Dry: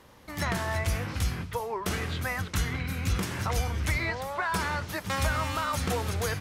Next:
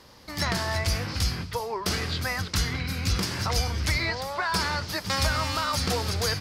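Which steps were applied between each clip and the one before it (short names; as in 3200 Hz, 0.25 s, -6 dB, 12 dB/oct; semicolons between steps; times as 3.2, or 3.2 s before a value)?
bell 4800 Hz +13 dB 0.53 oct; gain +1.5 dB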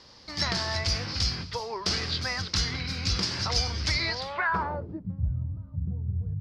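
low-pass sweep 5100 Hz -> 130 Hz, 4.18–5.17; gain -3.5 dB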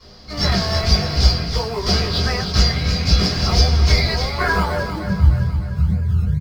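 in parallel at -8.5 dB: decimation with a swept rate 26×, swing 60% 2.3 Hz; on the sum: feedback echo 0.304 s, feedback 55%, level -9 dB; reverb, pre-delay 3 ms, DRR -12.5 dB; gain -9 dB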